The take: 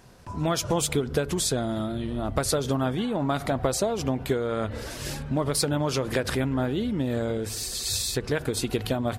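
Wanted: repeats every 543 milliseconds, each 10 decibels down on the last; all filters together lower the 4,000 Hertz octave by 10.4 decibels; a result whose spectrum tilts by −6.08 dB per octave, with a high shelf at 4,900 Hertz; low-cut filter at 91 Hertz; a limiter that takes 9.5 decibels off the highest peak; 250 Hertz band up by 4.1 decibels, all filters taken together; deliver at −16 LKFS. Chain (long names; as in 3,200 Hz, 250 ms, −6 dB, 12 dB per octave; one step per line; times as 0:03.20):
high-pass filter 91 Hz
parametric band 250 Hz +5 dB
parametric band 4,000 Hz −9 dB
high-shelf EQ 4,900 Hz −8 dB
brickwall limiter −18.5 dBFS
repeating echo 543 ms, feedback 32%, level −10 dB
level +12.5 dB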